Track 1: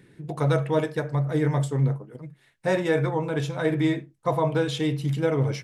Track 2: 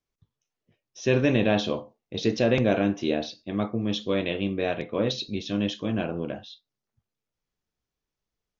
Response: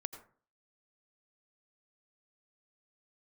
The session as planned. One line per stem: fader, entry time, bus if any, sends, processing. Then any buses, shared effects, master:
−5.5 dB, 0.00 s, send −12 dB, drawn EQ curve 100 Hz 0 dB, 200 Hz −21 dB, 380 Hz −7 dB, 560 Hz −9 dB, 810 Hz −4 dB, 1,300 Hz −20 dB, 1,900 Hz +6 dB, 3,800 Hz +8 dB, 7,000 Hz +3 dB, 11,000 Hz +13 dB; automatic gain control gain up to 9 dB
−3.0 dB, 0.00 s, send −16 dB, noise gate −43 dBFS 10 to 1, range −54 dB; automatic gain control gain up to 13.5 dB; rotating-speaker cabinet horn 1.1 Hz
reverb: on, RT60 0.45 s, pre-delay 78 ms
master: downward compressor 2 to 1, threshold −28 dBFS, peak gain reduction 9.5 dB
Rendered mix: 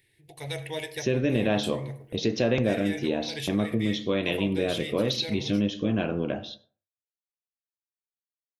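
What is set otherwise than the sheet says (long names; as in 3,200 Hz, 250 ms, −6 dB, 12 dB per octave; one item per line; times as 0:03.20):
stem 1 −5.5 dB → −14.5 dB
reverb return +9.5 dB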